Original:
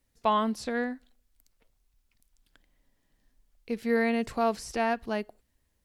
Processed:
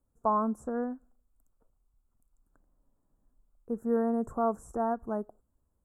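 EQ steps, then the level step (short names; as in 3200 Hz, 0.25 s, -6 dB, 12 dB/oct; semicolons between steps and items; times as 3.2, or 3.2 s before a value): elliptic band-stop 1300–7400 Hz, stop band 40 dB; high shelf 4800 Hz -9.5 dB; -1.0 dB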